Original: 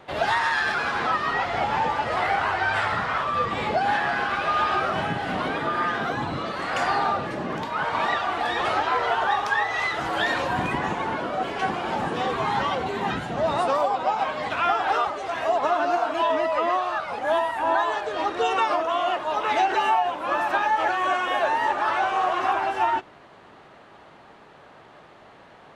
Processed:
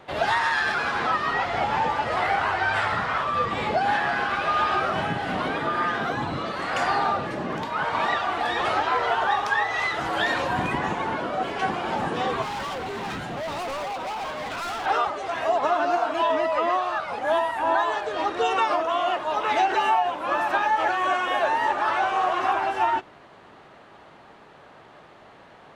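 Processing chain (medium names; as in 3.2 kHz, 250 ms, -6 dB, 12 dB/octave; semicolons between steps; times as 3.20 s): 12.42–14.86 s: overload inside the chain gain 29 dB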